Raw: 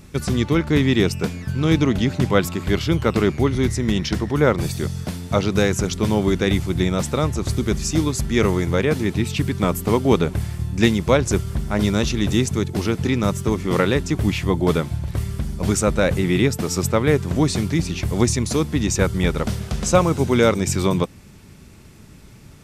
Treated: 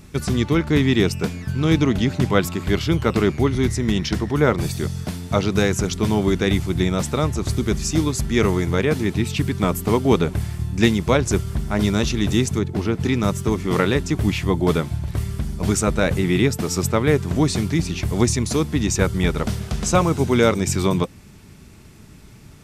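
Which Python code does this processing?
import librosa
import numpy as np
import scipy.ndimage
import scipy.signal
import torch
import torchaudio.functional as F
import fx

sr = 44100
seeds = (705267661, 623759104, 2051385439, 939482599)

y = fx.high_shelf(x, sr, hz=3400.0, db=-11.0, at=(12.58, 12.99), fade=0.02)
y = fx.notch(y, sr, hz=530.0, q=13.0)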